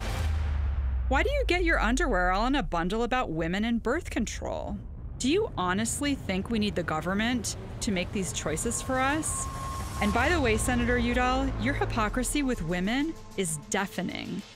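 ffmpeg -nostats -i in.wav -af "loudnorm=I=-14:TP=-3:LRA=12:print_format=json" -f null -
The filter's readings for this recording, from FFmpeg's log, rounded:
"input_i" : "-28.6",
"input_tp" : "-12.4",
"input_lra" : "3.0",
"input_thresh" : "-38.6",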